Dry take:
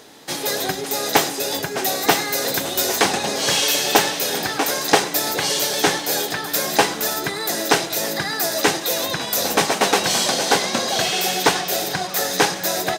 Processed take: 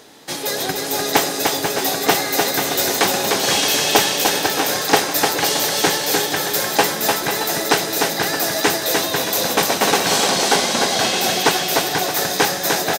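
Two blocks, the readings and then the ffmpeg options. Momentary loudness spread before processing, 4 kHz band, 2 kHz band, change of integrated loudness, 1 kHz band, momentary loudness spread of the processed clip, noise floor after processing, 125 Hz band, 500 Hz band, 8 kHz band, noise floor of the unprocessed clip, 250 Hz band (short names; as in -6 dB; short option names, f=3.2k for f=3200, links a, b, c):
5 LU, +2.0 dB, +2.0 dB, +2.0 dB, +2.0 dB, 4 LU, -25 dBFS, +2.0 dB, +2.0 dB, +2.0 dB, -29 dBFS, +2.0 dB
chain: -af "aecho=1:1:300|495|621.8|704.1|757.7:0.631|0.398|0.251|0.158|0.1"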